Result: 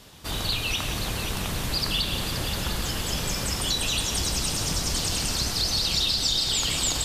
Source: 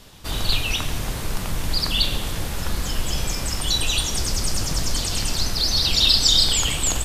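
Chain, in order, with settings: high-pass 60 Hz 6 dB/octave; compression, threshold -21 dBFS, peak gain reduction 8.5 dB; multi-head delay 176 ms, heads first and third, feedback 72%, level -10 dB; trim -1.5 dB

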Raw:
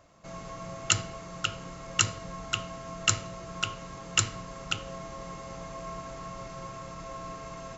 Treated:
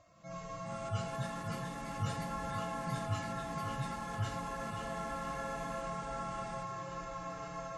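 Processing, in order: harmonic-percussive separation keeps harmonic; ever faster or slower copies 459 ms, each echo +4 st, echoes 2; repeats whose band climbs or falls 531 ms, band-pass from 430 Hz, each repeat 0.7 oct, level -1 dB; trim -2 dB

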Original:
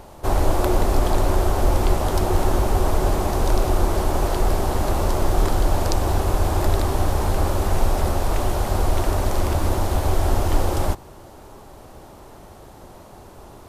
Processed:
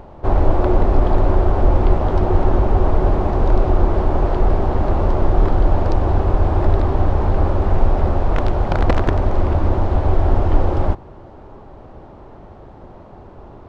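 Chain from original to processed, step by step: 8.35–9.23 s: integer overflow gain 11 dB; tape spacing loss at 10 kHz 38 dB; trim +5 dB

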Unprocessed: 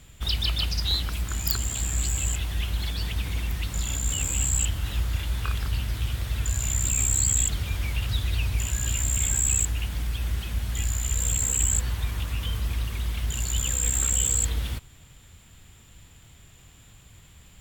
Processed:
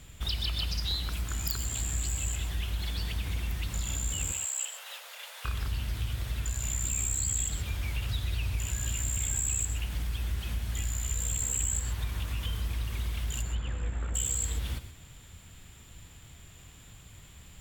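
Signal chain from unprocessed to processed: 13.41–14.14 s: low-pass 2.4 kHz -> 1.4 kHz 12 dB/octave; compression 2:1, threshold -33 dBFS, peak gain reduction 8 dB; 4.32–5.45 s: steep high-pass 480 Hz 96 dB/octave; gated-style reverb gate 150 ms rising, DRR 10.5 dB

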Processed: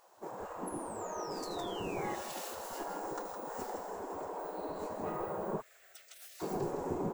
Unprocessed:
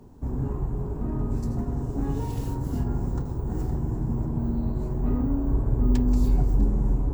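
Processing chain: on a send: feedback delay 162 ms, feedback 20%, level -7.5 dB; 0.68–2.15 s: on the sum: painted sound fall 1.9–11 kHz -22 dBFS; 5.60–6.42 s: elliptic high-pass 940 Hz, stop band 70 dB; spectral gate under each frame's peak -20 dB weak; trim +3.5 dB

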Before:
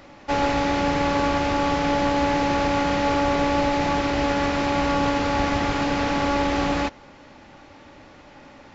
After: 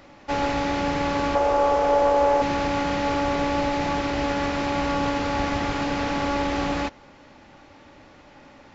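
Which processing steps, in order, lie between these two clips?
1.35–2.42 s: graphic EQ 125/250/500/1000/2000/4000 Hz -10/-8/+11/+4/-4/-5 dB; trim -2.5 dB

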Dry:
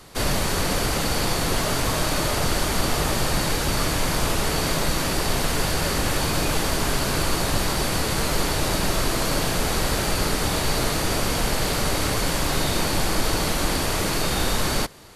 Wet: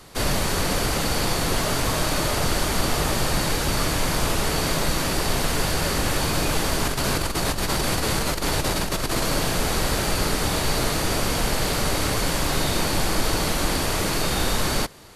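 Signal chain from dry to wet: 6.85–9.24 s: compressor with a negative ratio -23 dBFS, ratio -0.5

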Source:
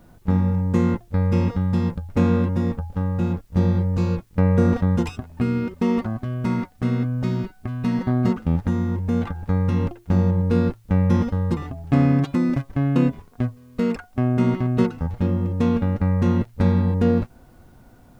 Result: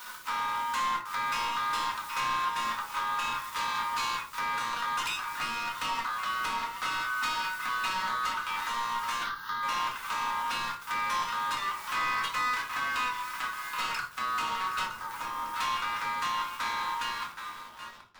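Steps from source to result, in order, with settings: fade out at the end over 2.78 s; rippled Chebyshev high-pass 930 Hz, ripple 3 dB; tape echo 773 ms, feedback 46%, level -17.5 dB, low-pass 3 kHz; compression 6:1, threshold -48 dBFS, peak gain reduction 15 dB; waveshaping leveller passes 5; 9.23–9.63 s: static phaser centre 2.4 kHz, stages 6; 14.84–15.54 s: peaking EQ 3.1 kHz -9 dB 2.1 oct; simulated room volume 300 m³, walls furnished, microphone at 2 m; trim +1.5 dB

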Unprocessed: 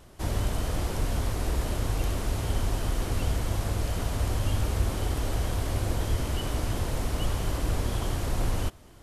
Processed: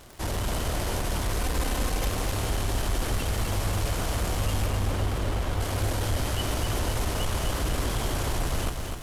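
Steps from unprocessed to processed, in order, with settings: 1.43–2.10 s: comb 3.9 ms, depth 77%; saturation -24 dBFS, distortion -13 dB; bass shelf 470 Hz -5.5 dB; crackle 180 per s -42 dBFS; 4.66–5.61 s: treble shelf 4.1 kHz -10 dB; bit-crushed delay 252 ms, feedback 55%, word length 11-bit, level -5 dB; trim +6 dB

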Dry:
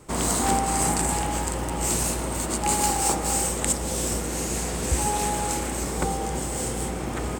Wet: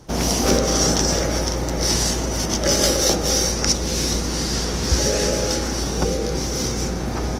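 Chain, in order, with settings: formant shift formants -6 st; trim +5 dB; Opus 24 kbps 48 kHz

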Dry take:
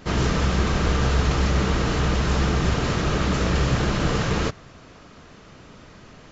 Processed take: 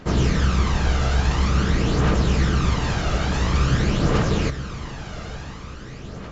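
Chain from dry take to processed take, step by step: echo that smears into a reverb 1021 ms, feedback 52%, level -11.5 dB; phaser 0.48 Hz, delay 1.5 ms, feedback 45%; trim -1.5 dB

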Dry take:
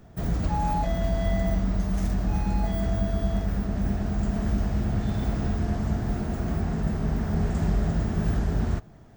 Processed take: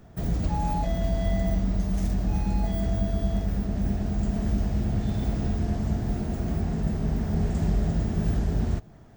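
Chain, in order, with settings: dynamic bell 1.3 kHz, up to -6 dB, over -49 dBFS, Q 1.1

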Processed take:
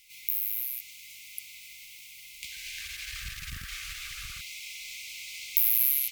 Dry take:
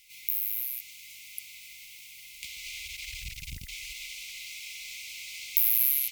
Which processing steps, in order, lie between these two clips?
2.23–4.41 s: ever faster or slower copies 287 ms, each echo -5 st, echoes 2, each echo -6 dB

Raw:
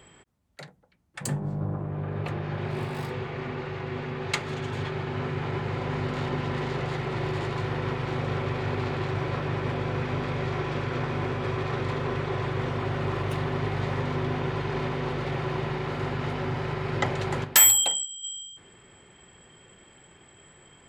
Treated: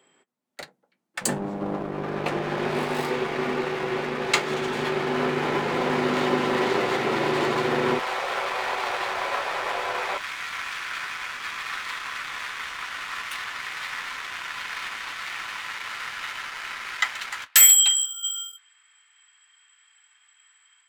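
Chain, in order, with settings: high-pass 210 Hz 24 dB/octave, from 7.99 s 590 Hz, from 10.17 s 1.3 kHz; waveshaping leveller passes 2; level rider gain up to 5.5 dB; flange 0.12 Hz, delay 7.4 ms, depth 7 ms, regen -53%

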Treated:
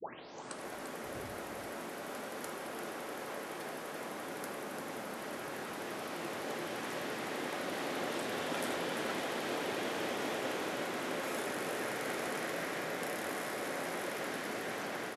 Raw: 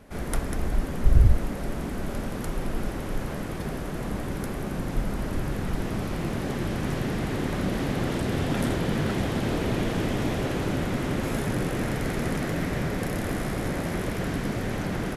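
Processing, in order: tape start-up on the opening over 0.67 s; high-pass 470 Hz 12 dB/octave; level rider gain up to 4 dB; delay 345 ms -7.5 dB; on a send at -10 dB: reverberation RT60 0.50 s, pre-delay 4 ms; on the sum: trim -9 dB

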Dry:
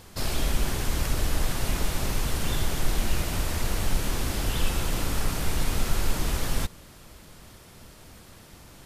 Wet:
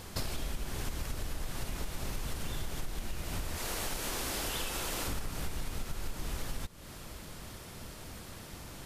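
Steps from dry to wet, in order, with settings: 3.56–5.08 s: tone controls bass -11 dB, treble +2 dB; compression 12:1, threshold -34 dBFS, peak gain reduction 18.5 dB; trim +2.5 dB

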